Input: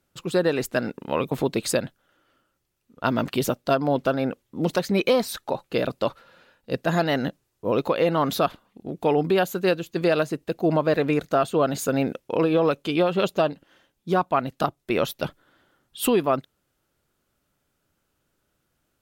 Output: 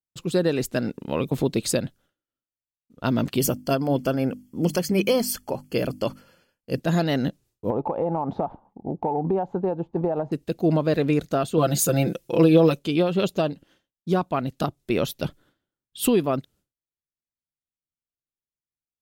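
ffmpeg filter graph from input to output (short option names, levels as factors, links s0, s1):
-filter_complex "[0:a]asettb=1/sr,asplit=3[s0][s1][s2];[s0]atrim=end=3.394[s3];[s1]atrim=start=3.39:end=6.8,asetpts=PTS-STARTPTS,afade=t=in:d=0.004:c=qsin,afade=t=out:st=3.406:d=0.004:c=qsin,asuperstop=centerf=3800:order=20:qfactor=5.5,highshelf=f=6800:g=9,bandreject=f=50:t=h:w=6,bandreject=f=100:t=h:w=6,bandreject=f=150:t=h:w=6,bandreject=f=200:t=h:w=6,bandreject=f=250:t=h:w=6,bandreject=f=300:t=h:w=6[s4];[s2]atrim=start=6.796[s5];[s3][s4]acrossfade=d=0.004:c1=hsin:c2=qsin[s6];[s6][s5]acrossfade=d=0.004:c1=qsin:c2=hsin,asettb=1/sr,asplit=3[s7][s8][s9];[s7]atrim=end=7.704[s10];[s8]atrim=start=7.7:end=10.32,asetpts=PTS-STARTPTS,afade=t=in:d=0.004:c=qsin,afade=t=out:st=2.616:d=0.004:c=qsin,lowpass=f=850:t=q:w=9.3,acompressor=threshold=0.1:ratio=4:attack=3.2:release=140:knee=1:detection=peak[s11];[s9]atrim=start=10.316[s12];[s10][s11]acrossfade=d=0.004:c1=hsin:c2=qsin[s13];[s13][s12]acrossfade=d=0.004:c1=qsin:c2=hsin,asettb=1/sr,asplit=3[s14][s15][s16];[s14]atrim=end=11.574[s17];[s15]atrim=start=11.57:end=12.79,asetpts=PTS-STARTPTS,afade=t=in:d=0.004:c=qsin,afade=t=out:st=1.216:d=0.004:c=qsin,highshelf=f=6500:g=9,aecho=1:1:5.9:0.85,atrim=end_sample=53802[s18];[s16]atrim=start=12.786[s19];[s17][s18]acrossfade=d=0.004:c1=hsin:c2=qsin[s20];[s20][s19]acrossfade=d=0.004:c1=qsin:c2=hsin,equalizer=f=1200:w=0.4:g=-10.5,agate=range=0.0224:threshold=0.00178:ratio=3:detection=peak,highshelf=f=10000:g=-6.5,volume=1.78"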